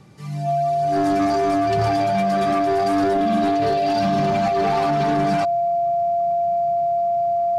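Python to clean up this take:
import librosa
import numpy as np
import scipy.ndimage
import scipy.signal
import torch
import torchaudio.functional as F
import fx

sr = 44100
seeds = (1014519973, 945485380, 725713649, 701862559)

y = fx.fix_declip(x, sr, threshold_db=-15.0)
y = fx.notch(y, sr, hz=690.0, q=30.0)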